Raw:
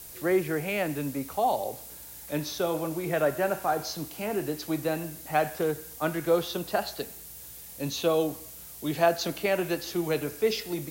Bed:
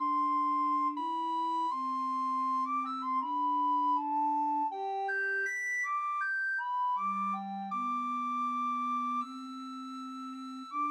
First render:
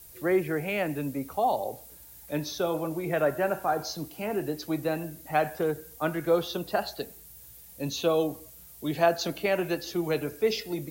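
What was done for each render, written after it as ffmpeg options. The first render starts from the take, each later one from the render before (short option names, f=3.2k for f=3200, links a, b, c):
-af "afftdn=nr=8:nf=-45"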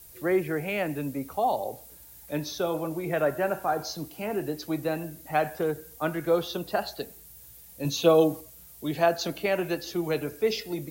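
-filter_complex "[0:a]asettb=1/sr,asplit=3[a][b][c];[a]atrim=end=7.844[d];[b]atrim=start=7.84:end=8.41,asetpts=PTS-STARTPTS,afade=t=in:d=0.004:c=qsin,afade=t=out:st=0.566:d=0.004:c=qsin,aecho=1:1:6.2:0.99,atrim=end_sample=25137[e];[c]atrim=start=8.406[f];[d][e]acrossfade=d=0.004:c1=hsin:c2=qsin[g];[g][f]acrossfade=d=0.004:c1=qsin:c2=hsin"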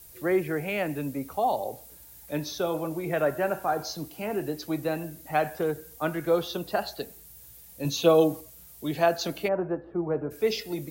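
-filter_complex "[0:a]asplit=3[a][b][c];[a]afade=t=out:st=9.47:d=0.02[d];[b]lowpass=f=1.3k:w=0.5412,lowpass=f=1.3k:w=1.3066,afade=t=in:st=9.47:d=0.02,afade=t=out:st=10.3:d=0.02[e];[c]afade=t=in:st=10.3:d=0.02[f];[d][e][f]amix=inputs=3:normalize=0"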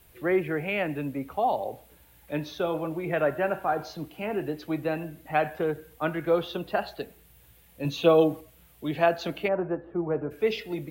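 -af "highshelf=f=4k:t=q:w=1.5:g=-10"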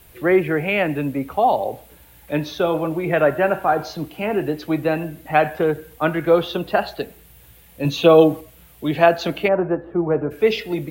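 -af "volume=8.5dB,alimiter=limit=-1dB:level=0:latency=1"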